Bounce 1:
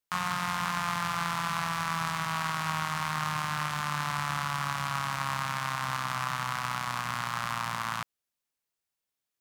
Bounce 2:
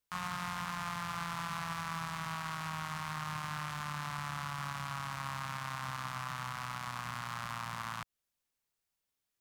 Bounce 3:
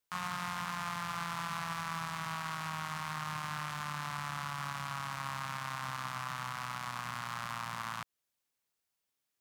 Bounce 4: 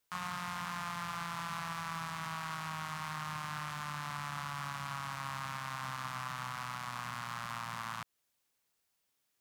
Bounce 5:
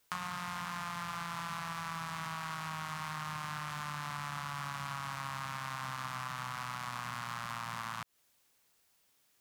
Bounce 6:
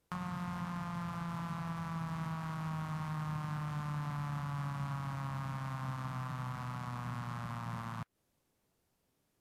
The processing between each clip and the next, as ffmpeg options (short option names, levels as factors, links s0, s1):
-af "lowshelf=f=94:g=8.5,alimiter=level_in=1.12:limit=0.0631:level=0:latency=1:release=138,volume=0.891"
-af "lowshelf=f=72:g=-11.5,volume=1.12"
-af "alimiter=level_in=2.37:limit=0.0631:level=0:latency=1:release=30,volume=0.422,volume=1.78"
-af "acompressor=threshold=0.00631:ratio=6,volume=2.66"
-af "acrusher=bits=5:mode=log:mix=0:aa=0.000001,tiltshelf=f=770:g=10,volume=0.891" -ar 32000 -c:a libvorbis -b:a 96k